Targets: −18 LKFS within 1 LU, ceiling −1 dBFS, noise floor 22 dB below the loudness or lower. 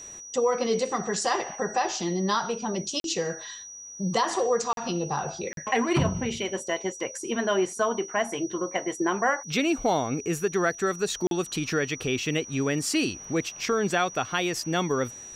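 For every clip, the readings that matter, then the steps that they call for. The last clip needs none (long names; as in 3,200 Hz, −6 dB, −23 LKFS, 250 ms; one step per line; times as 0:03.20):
number of dropouts 4; longest dropout 42 ms; interfering tone 5,800 Hz; level of the tone −40 dBFS; integrated loudness −27.5 LKFS; sample peak −11.0 dBFS; target loudness −18.0 LKFS
→ repair the gap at 0:03.00/0:04.73/0:05.53/0:11.27, 42 ms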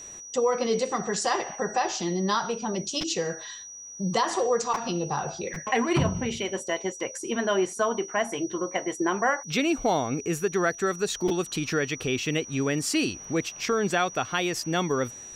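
number of dropouts 0; interfering tone 5,800 Hz; level of the tone −40 dBFS
→ notch filter 5,800 Hz, Q 30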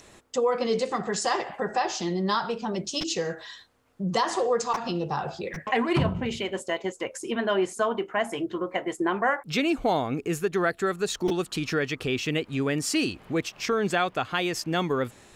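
interfering tone none found; integrated loudness −27.5 LKFS; sample peak −11.0 dBFS; target loudness −18.0 LKFS
→ level +9.5 dB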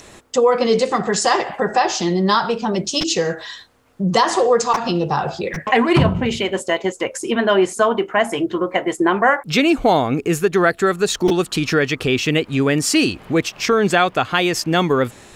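integrated loudness −18.0 LKFS; sample peak −1.5 dBFS; background noise floor −45 dBFS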